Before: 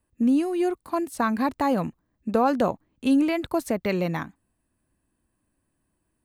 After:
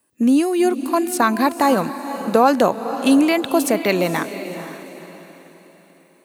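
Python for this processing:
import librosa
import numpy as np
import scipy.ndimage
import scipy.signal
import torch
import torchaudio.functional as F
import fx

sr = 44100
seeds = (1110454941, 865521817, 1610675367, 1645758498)

p1 = scipy.signal.sosfilt(scipy.signal.butter(2, 230.0, 'highpass', fs=sr, output='sos'), x)
p2 = fx.high_shelf(p1, sr, hz=3800.0, db=8.0)
p3 = p2 + fx.echo_diffused(p2, sr, ms=494, feedback_pct=41, wet_db=-11.0, dry=0)
y = p3 * 10.0 ** (7.5 / 20.0)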